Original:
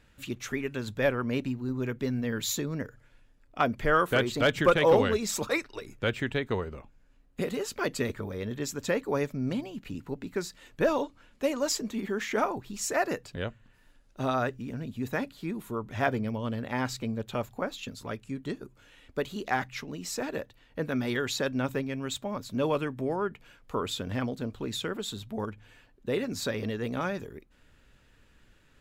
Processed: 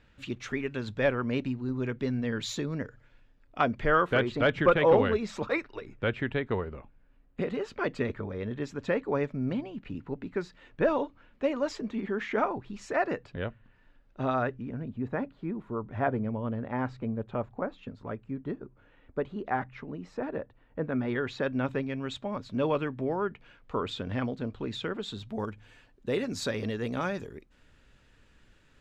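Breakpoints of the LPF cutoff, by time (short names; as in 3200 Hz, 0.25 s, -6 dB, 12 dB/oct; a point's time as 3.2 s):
3.59 s 4500 Hz
4.39 s 2600 Hz
14.33 s 2600 Hz
14.99 s 1400 Hz
20.81 s 1400 Hz
21.85 s 3500 Hz
25.02 s 3500 Hz
25.45 s 8600 Hz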